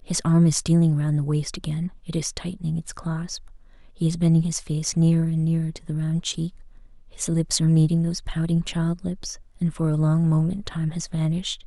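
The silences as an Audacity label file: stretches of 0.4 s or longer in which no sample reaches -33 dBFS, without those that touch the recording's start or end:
3.370000	4.010000	silence
6.490000	7.150000	silence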